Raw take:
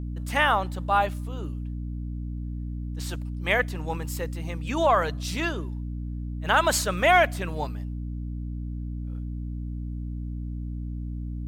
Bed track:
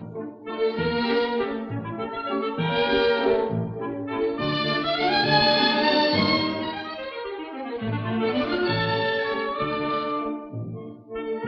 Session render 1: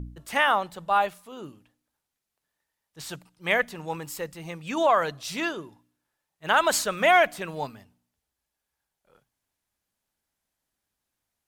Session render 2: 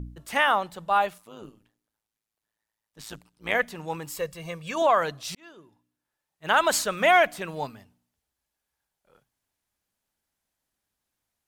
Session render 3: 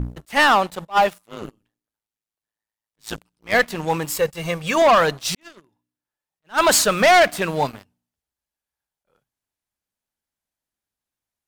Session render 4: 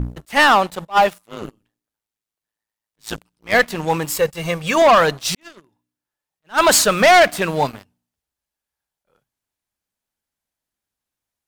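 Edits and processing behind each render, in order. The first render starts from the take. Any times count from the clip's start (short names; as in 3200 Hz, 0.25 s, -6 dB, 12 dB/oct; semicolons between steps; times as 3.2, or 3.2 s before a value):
de-hum 60 Hz, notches 5
1.18–3.55 AM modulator 110 Hz, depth 70%; 4.17–4.82 comb 1.8 ms; 5.35–6.53 fade in
sample leveller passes 3; attack slew limiter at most 380 dB/s
gain +2.5 dB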